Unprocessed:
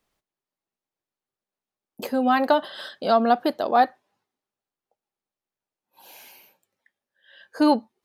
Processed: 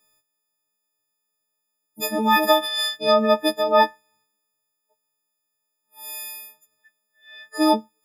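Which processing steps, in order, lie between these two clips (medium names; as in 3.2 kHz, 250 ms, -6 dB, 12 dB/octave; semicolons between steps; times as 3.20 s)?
partials quantised in pitch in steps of 6 st; 2.22–2.96 s: treble shelf 5.5 kHz -> 3.8 kHz +10.5 dB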